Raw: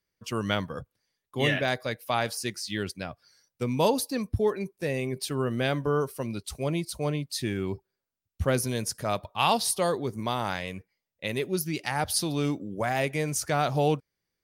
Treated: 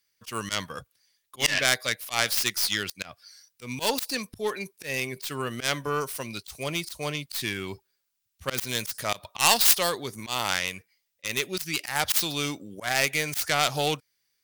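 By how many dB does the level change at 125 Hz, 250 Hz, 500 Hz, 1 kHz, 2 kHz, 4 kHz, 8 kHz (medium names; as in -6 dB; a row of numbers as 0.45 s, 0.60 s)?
-7.0 dB, -6.0 dB, -4.5 dB, -0.5 dB, +5.0 dB, +7.0 dB, +5.5 dB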